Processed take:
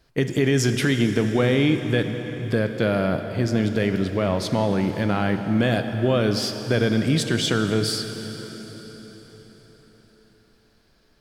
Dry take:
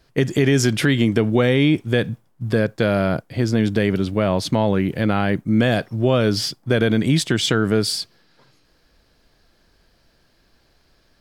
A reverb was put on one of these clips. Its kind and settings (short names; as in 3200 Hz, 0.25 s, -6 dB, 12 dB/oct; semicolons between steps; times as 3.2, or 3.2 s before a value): plate-style reverb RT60 4.9 s, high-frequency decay 0.85×, DRR 6.5 dB; gain -3.5 dB